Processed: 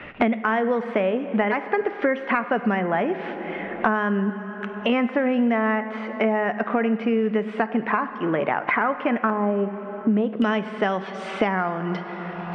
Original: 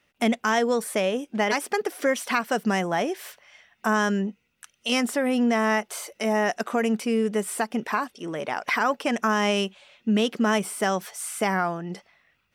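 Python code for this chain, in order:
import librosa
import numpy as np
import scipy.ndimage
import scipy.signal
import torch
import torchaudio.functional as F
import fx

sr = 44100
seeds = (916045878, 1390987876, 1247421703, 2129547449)

y = fx.lowpass(x, sr, hz=fx.steps((0.0, 2400.0), (9.3, 1000.0), (10.42, 3400.0)), slope=24)
y = fx.rev_plate(y, sr, seeds[0], rt60_s=1.9, hf_ratio=0.75, predelay_ms=0, drr_db=11.5)
y = fx.band_squash(y, sr, depth_pct=100)
y = y * 10.0 ** (1.0 / 20.0)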